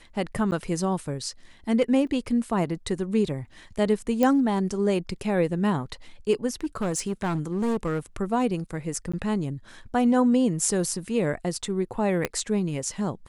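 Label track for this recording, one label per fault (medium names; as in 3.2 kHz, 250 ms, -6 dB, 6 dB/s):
0.510000	0.520000	dropout 9.4 ms
2.070000	2.070000	dropout 3.5 ms
4.230000	4.230000	pop -10 dBFS
6.610000	7.990000	clipped -22 dBFS
9.120000	9.130000	dropout 15 ms
12.250000	12.250000	pop -10 dBFS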